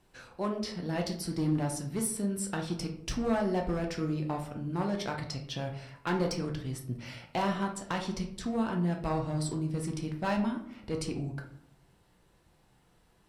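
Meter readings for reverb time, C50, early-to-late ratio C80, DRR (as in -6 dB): 0.70 s, 8.5 dB, 12.5 dB, 1.5 dB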